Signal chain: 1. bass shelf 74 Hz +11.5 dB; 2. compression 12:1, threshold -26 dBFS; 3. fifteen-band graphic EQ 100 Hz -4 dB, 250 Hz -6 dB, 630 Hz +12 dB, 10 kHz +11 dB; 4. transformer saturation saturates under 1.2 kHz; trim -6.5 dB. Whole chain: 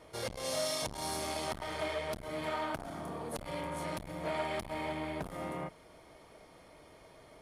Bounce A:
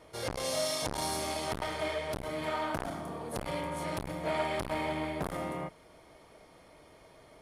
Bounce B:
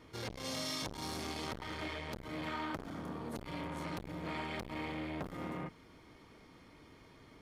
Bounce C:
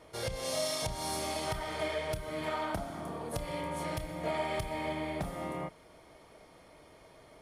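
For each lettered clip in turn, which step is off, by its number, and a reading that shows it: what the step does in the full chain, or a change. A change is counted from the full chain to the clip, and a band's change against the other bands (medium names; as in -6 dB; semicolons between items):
2, mean gain reduction 3.0 dB; 3, momentary loudness spread change -2 LU; 4, crest factor change -1.5 dB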